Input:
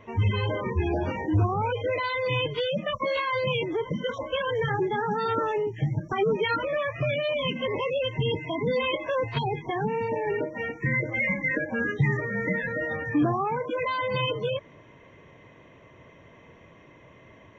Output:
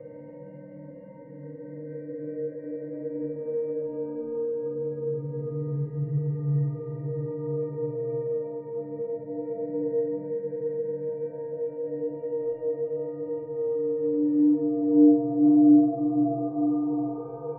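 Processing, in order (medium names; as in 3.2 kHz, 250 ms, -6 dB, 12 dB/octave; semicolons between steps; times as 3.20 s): rattle on loud lows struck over -21 dBFS, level -28 dBFS; in parallel at -6 dB: saturation -27 dBFS, distortion -10 dB; on the sum: Paulstretch 7.8×, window 0.50 s, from 11.22 s; resonant low-pass 530 Hz, resonance Q 4.9; inharmonic resonator 140 Hz, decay 0.53 s, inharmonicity 0.03; flutter echo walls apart 8.1 m, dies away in 0.8 s; trim -2 dB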